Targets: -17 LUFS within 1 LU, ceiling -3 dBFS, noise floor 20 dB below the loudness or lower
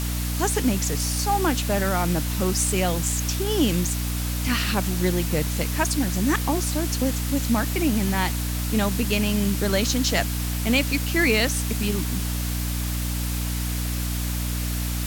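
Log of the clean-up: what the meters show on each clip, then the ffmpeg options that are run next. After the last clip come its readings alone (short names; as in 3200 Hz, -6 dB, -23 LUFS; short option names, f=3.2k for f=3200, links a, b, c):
hum 60 Hz; harmonics up to 300 Hz; hum level -24 dBFS; noise floor -27 dBFS; noise floor target -44 dBFS; loudness -23.5 LUFS; peak -6.5 dBFS; loudness target -17.0 LUFS
-> -af "bandreject=f=60:t=h:w=4,bandreject=f=120:t=h:w=4,bandreject=f=180:t=h:w=4,bandreject=f=240:t=h:w=4,bandreject=f=300:t=h:w=4"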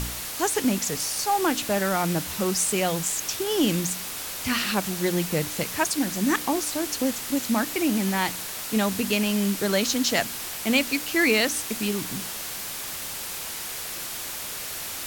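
hum none; noise floor -34 dBFS; noise floor target -45 dBFS
-> -af "afftdn=nr=11:nf=-34"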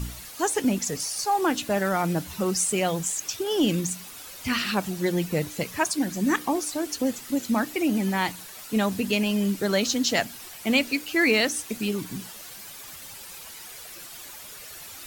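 noise floor -42 dBFS; noise floor target -46 dBFS
-> -af "afftdn=nr=6:nf=-42"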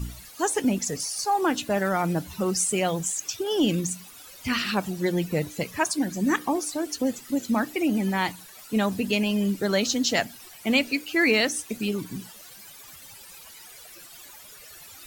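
noise floor -47 dBFS; loudness -25.5 LUFS; peak -8.5 dBFS; loudness target -17.0 LUFS
-> -af "volume=8.5dB,alimiter=limit=-3dB:level=0:latency=1"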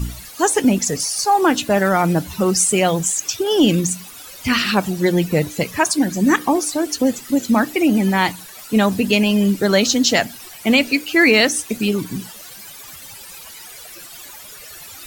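loudness -17.5 LUFS; peak -3.0 dBFS; noise floor -38 dBFS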